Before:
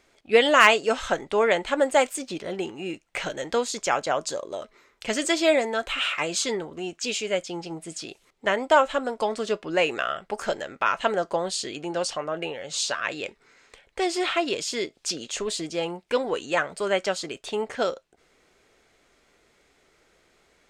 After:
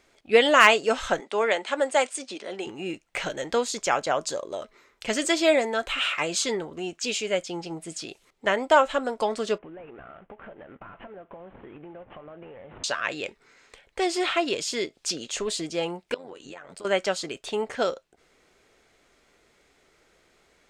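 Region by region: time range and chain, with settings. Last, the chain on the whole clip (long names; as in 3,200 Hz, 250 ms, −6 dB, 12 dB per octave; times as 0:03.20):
0:01.20–0:02.67: Chebyshev band-pass filter 200–9,700 Hz, order 4 + low-shelf EQ 390 Hz −8 dB
0:09.58–0:12.84: variable-slope delta modulation 16 kbit/s + low-pass filter 1,200 Hz 6 dB per octave + downward compressor 10 to 1, threshold −40 dBFS
0:16.14–0:16.85: downward compressor 16 to 1, threshold −35 dBFS + amplitude modulation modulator 91 Hz, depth 60%
whole clip: no processing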